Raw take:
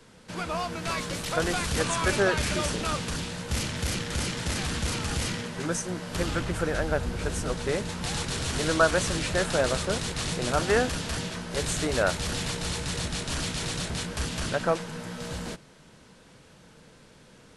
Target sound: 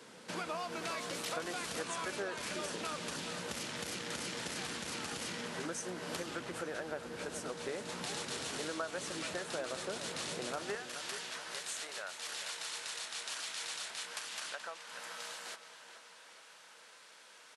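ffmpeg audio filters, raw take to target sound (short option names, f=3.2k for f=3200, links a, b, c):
-filter_complex "[0:a]acompressor=threshold=-36dB:ratio=12,asetnsamples=n=441:p=0,asendcmd='10.75 highpass f 950',highpass=250,asplit=2[a][b];[b]adelay=427,lowpass=f=4.3k:p=1,volume=-10.5dB,asplit=2[c][d];[d]adelay=427,lowpass=f=4.3k:p=1,volume=0.54,asplit=2[e][f];[f]adelay=427,lowpass=f=4.3k:p=1,volume=0.54,asplit=2[g][h];[h]adelay=427,lowpass=f=4.3k:p=1,volume=0.54,asplit=2[i][j];[j]adelay=427,lowpass=f=4.3k:p=1,volume=0.54,asplit=2[k][l];[l]adelay=427,lowpass=f=4.3k:p=1,volume=0.54[m];[a][c][e][g][i][k][m]amix=inputs=7:normalize=0,volume=1dB"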